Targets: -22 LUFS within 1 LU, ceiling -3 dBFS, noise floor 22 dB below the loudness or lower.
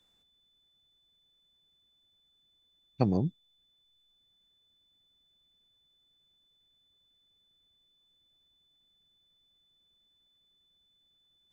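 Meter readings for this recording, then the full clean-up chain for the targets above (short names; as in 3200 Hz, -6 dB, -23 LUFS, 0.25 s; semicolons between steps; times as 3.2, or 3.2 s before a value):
steady tone 3500 Hz; tone level -68 dBFS; loudness -30.5 LUFS; peak -10.5 dBFS; loudness target -22.0 LUFS
-> notch 3500 Hz, Q 30; gain +8.5 dB; limiter -3 dBFS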